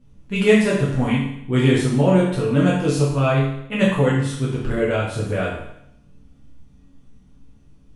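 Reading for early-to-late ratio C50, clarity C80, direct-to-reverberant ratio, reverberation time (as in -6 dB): 2.5 dB, 5.5 dB, -7.5 dB, 0.75 s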